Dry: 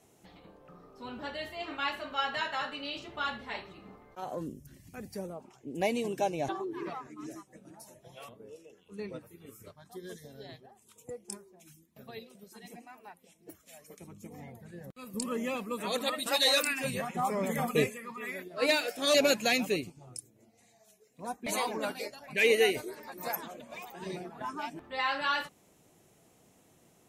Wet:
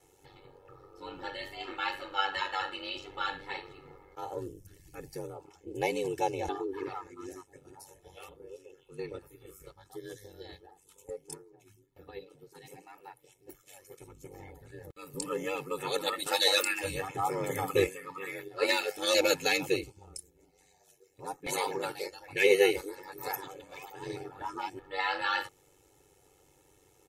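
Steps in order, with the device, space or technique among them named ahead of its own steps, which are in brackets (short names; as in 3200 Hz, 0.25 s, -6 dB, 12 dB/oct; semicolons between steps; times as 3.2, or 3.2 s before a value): ring-modulated robot voice (ring modulator 48 Hz; comb 2.3 ms, depth 95%); 11.34–12.55 high shelf 3400 Hz -10.5 dB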